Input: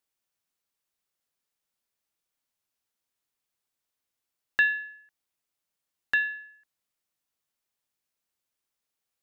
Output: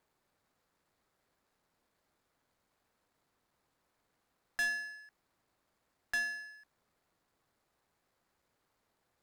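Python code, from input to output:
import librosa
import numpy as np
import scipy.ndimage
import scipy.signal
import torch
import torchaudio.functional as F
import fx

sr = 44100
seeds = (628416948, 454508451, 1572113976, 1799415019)

y = scipy.ndimage.median_filter(x, 15, mode='constant')
y = fx.clip_asym(y, sr, top_db=-27.0, bottom_db=-22.5)
y = fx.power_curve(y, sr, exponent=0.7)
y = y * librosa.db_to_amplitude(-6.0)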